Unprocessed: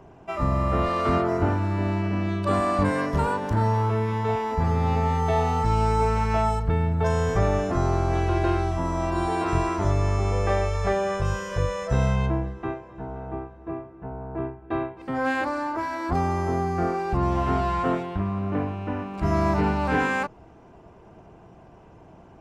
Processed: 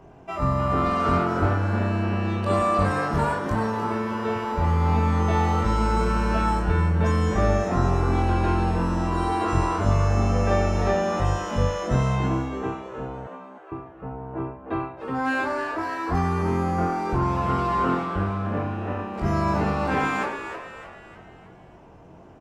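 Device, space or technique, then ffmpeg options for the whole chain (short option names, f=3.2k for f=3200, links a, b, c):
slapback doubling: -filter_complex "[0:a]asplit=3[a][b][c];[b]adelay=22,volume=-3dB[d];[c]adelay=96,volume=-11dB[e];[a][d][e]amix=inputs=3:normalize=0,asettb=1/sr,asplit=3[f][g][h];[f]atrim=end=13.274[i];[g]atrim=start=13.27:end=13.72,asetpts=PTS-STARTPTS,afade=t=in:d=0.004:c=qsin,afade=t=out:st=0.446:d=0.004:c=qsin,highpass=1.2k[j];[h]atrim=start=13.716[k];[i][j]acrossfade=d=0.004:c1=hsin:c2=qsin[l];[l][k]acrossfade=d=0.004:c1=qsin:c2=hsin,asplit=6[m][n][o][p][q][r];[n]adelay=306,afreqshift=130,volume=-9dB[s];[o]adelay=612,afreqshift=260,volume=-16.1dB[t];[p]adelay=918,afreqshift=390,volume=-23.3dB[u];[q]adelay=1224,afreqshift=520,volume=-30.4dB[v];[r]adelay=1530,afreqshift=650,volume=-37.5dB[w];[m][s][t][u][v][w]amix=inputs=6:normalize=0,volume=-1.5dB"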